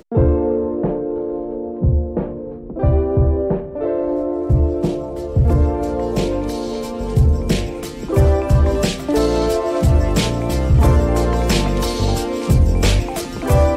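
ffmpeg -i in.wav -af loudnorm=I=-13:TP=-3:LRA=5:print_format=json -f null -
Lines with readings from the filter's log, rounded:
"input_i" : "-18.2",
"input_tp" : "-4.9",
"input_lra" : "3.1",
"input_thresh" : "-28.2",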